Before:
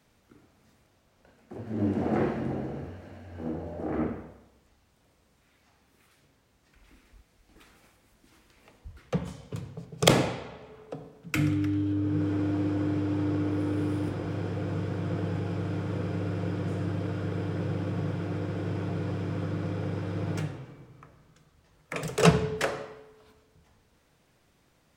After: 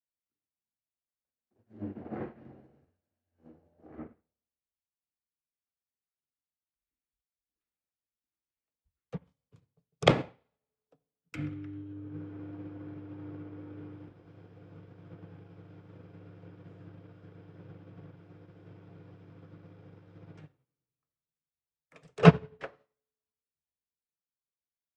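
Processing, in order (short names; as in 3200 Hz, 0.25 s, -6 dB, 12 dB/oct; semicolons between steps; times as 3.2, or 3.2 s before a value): treble ducked by the level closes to 2800 Hz, closed at -25 dBFS; upward expander 2.5:1, over -46 dBFS; gain +4.5 dB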